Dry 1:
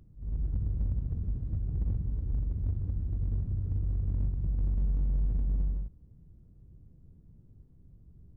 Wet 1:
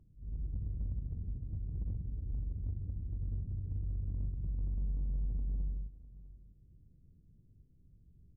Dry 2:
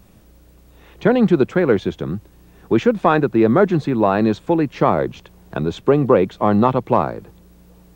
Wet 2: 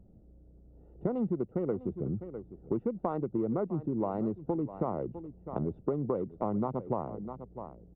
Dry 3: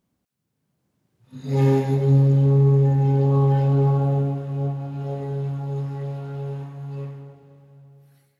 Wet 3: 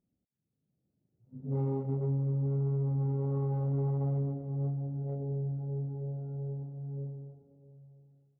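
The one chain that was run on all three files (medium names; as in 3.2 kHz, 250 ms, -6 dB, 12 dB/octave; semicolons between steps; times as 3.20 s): local Wiener filter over 41 samples; Savitzky-Golay filter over 65 samples; delay 652 ms -18.5 dB; compression 6:1, threshold -21 dBFS; trim -7 dB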